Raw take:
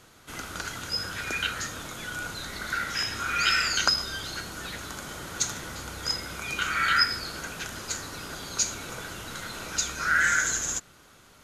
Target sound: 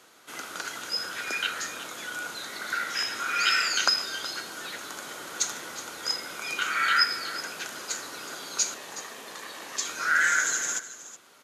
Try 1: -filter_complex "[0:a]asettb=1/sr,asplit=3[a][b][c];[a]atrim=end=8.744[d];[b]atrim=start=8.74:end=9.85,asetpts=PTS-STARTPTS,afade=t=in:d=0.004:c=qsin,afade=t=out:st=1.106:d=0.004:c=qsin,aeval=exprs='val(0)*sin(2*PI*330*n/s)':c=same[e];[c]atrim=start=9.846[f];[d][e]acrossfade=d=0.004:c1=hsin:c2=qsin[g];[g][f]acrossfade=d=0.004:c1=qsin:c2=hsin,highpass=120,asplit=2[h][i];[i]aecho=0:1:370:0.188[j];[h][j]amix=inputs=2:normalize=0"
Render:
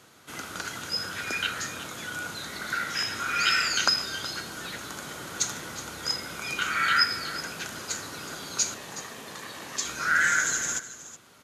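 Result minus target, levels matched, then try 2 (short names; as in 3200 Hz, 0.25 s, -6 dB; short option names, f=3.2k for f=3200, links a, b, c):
125 Hz band +12.5 dB
-filter_complex "[0:a]asettb=1/sr,asplit=3[a][b][c];[a]atrim=end=8.744[d];[b]atrim=start=8.74:end=9.85,asetpts=PTS-STARTPTS,afade=t=in:d=0.004:c=qsin,afade=t=out:st=1.106:d=0.004:c=qsin,aeval=exprs='val(0)*sin(2*PI*330*n/s)':c=same[e];[c]atrim=start=9.846[f];[d][e]acrossfade=d=0.004:c1=hsin:c2=qsin[g];[g][f]acrossfade=d=0.004:c1=qsin:c2=hsin,highpass=320,asplit=2[h][i];[i]aecho=0:1:370:0.188[j];[h][j]amix=inputs=2:normalize=0"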